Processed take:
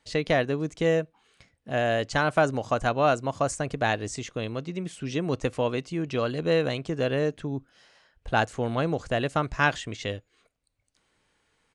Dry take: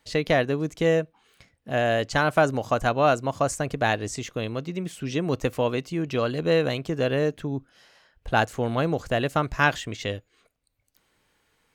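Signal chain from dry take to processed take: resampled via 22.05 kHz; trim -2 dB

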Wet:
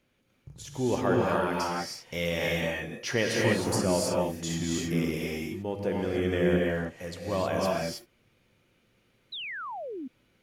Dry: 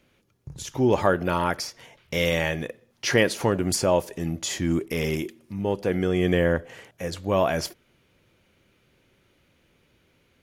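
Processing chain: gated-style reverb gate 340 ms rising, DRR -2.5 dB; painted sound fall, 9.32–10.08 s, 240–4100 Hz -29 dBFS; trim -8 dB

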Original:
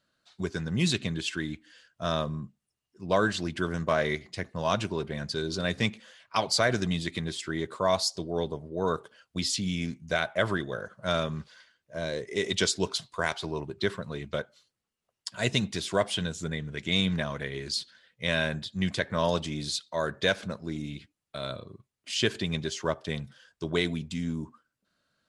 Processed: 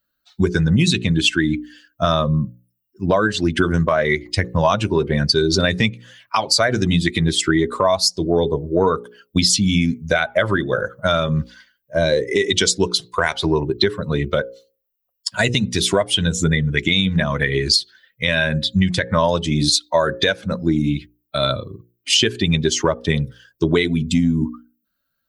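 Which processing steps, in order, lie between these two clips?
expander on every frequency bin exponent 1.5; hum notches 60/120/180/240/300/360/420/480/540 Hz; compression 12:1, threshold -38 dBFS, peak gain reduction 17 dB; loudness maximiser +28.5 dB; trim -3 dB

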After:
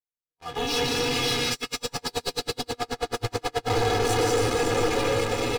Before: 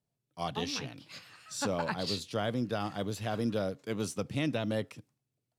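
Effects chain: waveshaping leveller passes 3; treble shelf 6.8 kHz -12 dB; feedback comb 240 Hz, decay 0.17 s, harmonics all, mix 90%; feedback echo behind a high-pass 554 ms, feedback 62%, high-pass 2.5 kHz, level -7.5 dB; slow attack 787 ms; reverberation RT60 5.5 s, pre-delay 108 ms, DRR -6 dB; waveshaping leveller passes 5; comb 2.4 ms, depth 92%; 1.53–3.70 s: logarithmic tremolo 9.3 Hz, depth 39 dB

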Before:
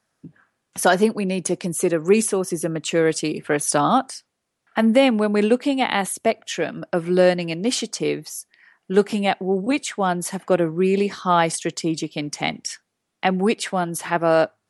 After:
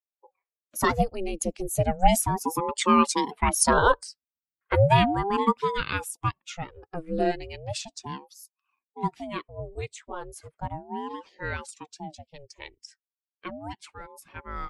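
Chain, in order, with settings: expander on every frequency bin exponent 1.5; Doppler pass-by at 3.31 s, 11 m/s, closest 15 m; ring modulator with a swept carrier 440 Hz, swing 65%, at 0.35 Hz; trim +5 dB

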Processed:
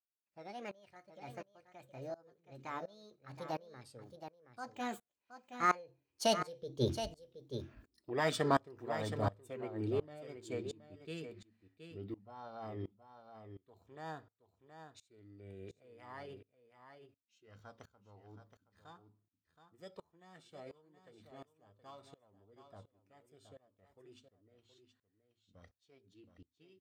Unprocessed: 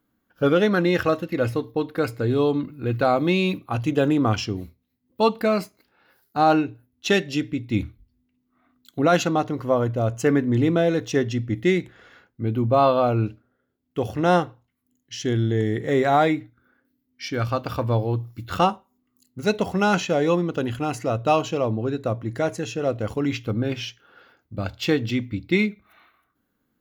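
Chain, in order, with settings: Doppler pass-by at 7.26 s, 41 m/s, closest 5 m; formant shift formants +6 st; delay 722 ms -9.5 dB; sawtooth tremolo in dB swelling 1.4 Hz, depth 23 dB; trim +13 dB

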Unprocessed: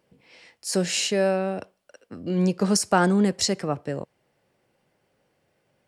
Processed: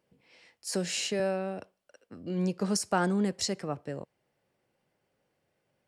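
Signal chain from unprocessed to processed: 0.67–1.20 s: three bands compressed up and down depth 40%; trim -7.5 dB

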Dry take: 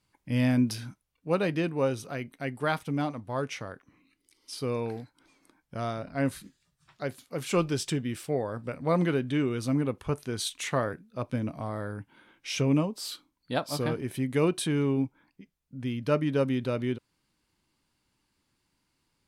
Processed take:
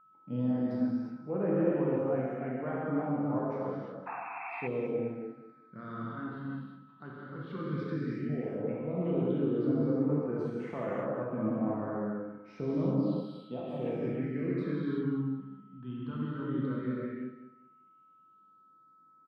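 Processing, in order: high-pass 150 Hz 24 dB/octave; peaking EQ 8.4 kHz -10 dB 2.7 oct; peak limiter -22.5 dBFS, peak gain reduction 10.5 dB; gated-style reverb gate 390 ms flat, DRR -6.5 dB; painted sound noise, 4.06–4.68 s, 660–2700 Hz -25 dBFS; phase shifter stages 6, 0.11 Hz, lowest notch 580–4100 Hz; whistle 1.3 kHz -52 dBFS; distance through air 430 m; feedback delay 196 ms, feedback 24%, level -12.5 dB; trim -4.5 dB

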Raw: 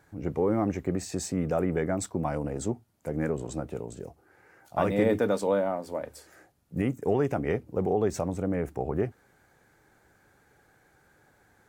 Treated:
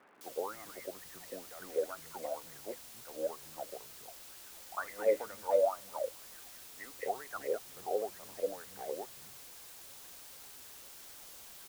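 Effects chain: wah-wah 2.1 Hz 510–2100 Hz, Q 13; in parallel at -7 dB: word length cut 8-bit, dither triangular; on the sum: three bands offset in time mids, highs, lows 210/280 ms, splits 180/1900 Hz; crackle 160 per s -63 dBFS; trim +3.5 dB

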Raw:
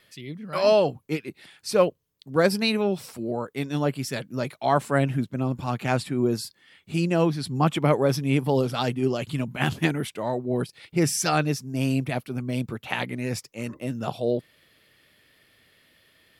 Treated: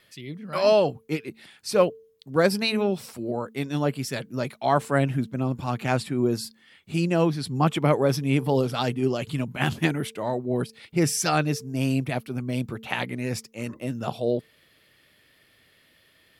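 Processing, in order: de-hum 223.4 Hz, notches 2

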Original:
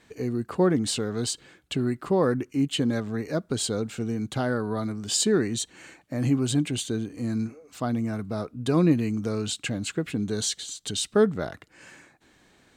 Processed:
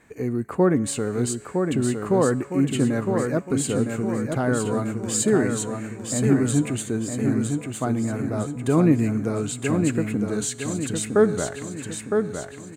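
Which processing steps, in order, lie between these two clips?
high-order bell 4.1 kHz -10.5 dB 1.2 oct; feedback comb 140 Hz, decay 1.7 s, mix 50%; on a send: feedback delay 960 ms, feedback 47%, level -5 dB; on the sum: trim +8.5 dB

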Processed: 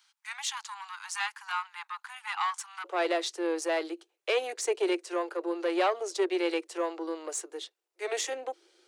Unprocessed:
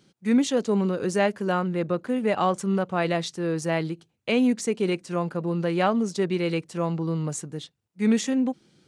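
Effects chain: single-diode clipper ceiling -18 dBFS; steep high-pass 840 Hz 96 dB/octave, from 2.84 s 330 Hz

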